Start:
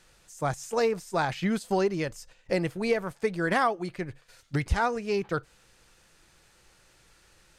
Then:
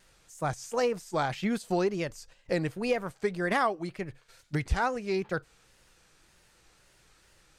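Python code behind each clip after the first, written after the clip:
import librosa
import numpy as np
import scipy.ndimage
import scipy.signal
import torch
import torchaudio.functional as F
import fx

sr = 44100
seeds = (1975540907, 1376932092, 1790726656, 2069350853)

y = fx.wow_flutter(x, sr, seeds[0], rate_hz=2.1, depth_cents=120.0)
y = F.gain(torch.from_numpy(y), -2.0).numpy()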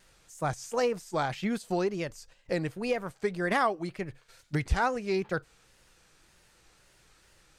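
y = fx.rider(x, sr, range_db=3, speed_s=2.0)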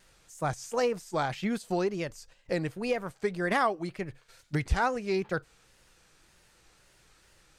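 y = x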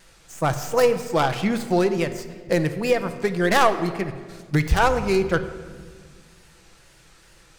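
y = fx.tracing_dist(x, sr, depth_ms=0.15)
y = fx.room_shoebox(y, sr, seeds[1], volume_m3=2100.0, walls='mixed', distance_m=0.73)
y = F.gain(torch.from_numpy(y), 8.0).numpy()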